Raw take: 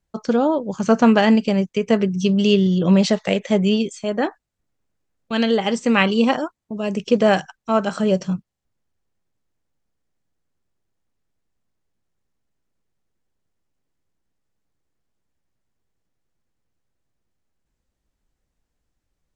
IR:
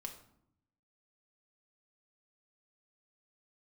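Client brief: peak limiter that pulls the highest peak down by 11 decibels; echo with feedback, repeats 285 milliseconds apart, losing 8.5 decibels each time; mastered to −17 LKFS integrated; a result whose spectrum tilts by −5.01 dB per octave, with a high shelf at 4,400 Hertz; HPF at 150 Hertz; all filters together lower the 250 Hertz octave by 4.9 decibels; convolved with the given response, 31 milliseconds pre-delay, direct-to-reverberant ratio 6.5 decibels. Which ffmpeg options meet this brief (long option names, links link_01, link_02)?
-filter_complex "[0:a]highpass=150,equalizer=frequency=250:width_type=o:gain=-5,highshelf=frequency=4400:gain=-3.5,alimiter=limit=-13dB:level=0:latency=1,aecho=1:1:285|570|855|1140:0.376|0.143|0.0543|0.0206,asplit=2[link_01][link_02];[1:a]atrim=start_sample=2205,adelay=31[link_03];[link_02][link_03]afir=irnorm=-1:irlink=0,volume=-3dB[link_04];[link_01][link_04]amix=inputs=2:normalize=0,volume=5.5dB"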